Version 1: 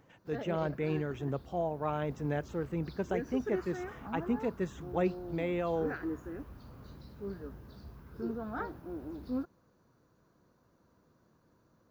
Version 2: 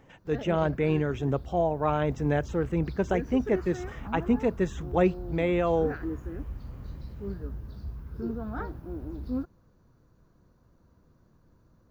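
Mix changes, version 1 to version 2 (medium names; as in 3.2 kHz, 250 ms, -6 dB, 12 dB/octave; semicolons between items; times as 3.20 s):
speech +7.5 dB; background: remove high-pass 290 Hz 6 dB/octave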